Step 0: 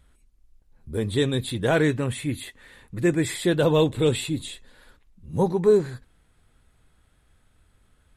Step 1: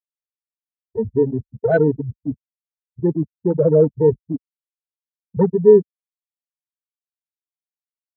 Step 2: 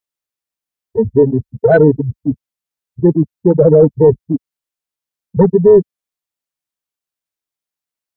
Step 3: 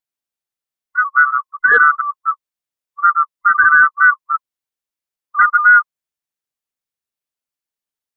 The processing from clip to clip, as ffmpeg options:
-af "afftfilt=real='re*gte(hypot(re,im),0.398)':imag='im*gte(hypot(re,im),0.398)':win_size=1024:overlap=0.75,afwtdn=0.0251,aecho=1:1:4.5:0.39,volume=1.88"
-af "apsyclip=2.99,volume=0.841"
-af "afftfilt=real='real(if(lt(b,960),b+48*(1-2*mod(floor(b/48),2)),b),0)':imag='imag(if(lt(b,960),b+48*(1-2*mod(floor(b/48),2)),b),0)':win_size=2048:overlap=0.75,volume=0.794"

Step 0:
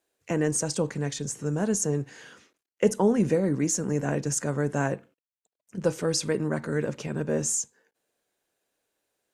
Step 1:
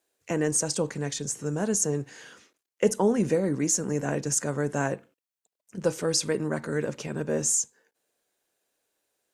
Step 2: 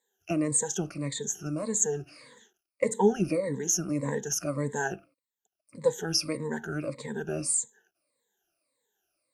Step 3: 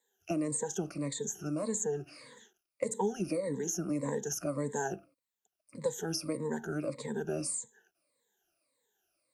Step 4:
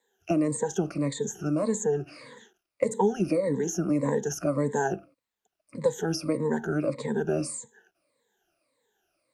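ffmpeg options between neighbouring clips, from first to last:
-af "bass=f=250:g=-3,treble=f=4000:g=3"
-af "afftfilt=real='re*pow(10,24/40*sin(2*PI*(1*log(max(b,1)*sr/1024/100)/log(2)-(-1.7)*(pts-256)/sr)))':imag='im*pow(10,24/40*sin(2*PI*(1*log(max(b,1)*sr/1024/100)/log(2)-(-1.7)*(pts-256)/sr)))':win_size=1024:overlap=0.75,volume=0.398"
-filter_complex "[0:a]acrossover=split=160|1300|3800|7600[s0][s1][s2][s3][s4];[s0]acompressor=threshold=0.00282:ratio=4[s5];[s1]acompressor=threshold=0.0316:ratio=4[s6];[s2]acompressor=threshold=0.00158:ratio=4[s7];[s3]acompressor=threshold=0.00708:ratio=4[s8];[s4]acompressor=threshold=0.01:ratio=4[s9];[s5][s6][s7][s8][s9]amix=inputs=5:normalize=0"
-af "highshelf=f=4900:g=-11.5,volume=2.51"

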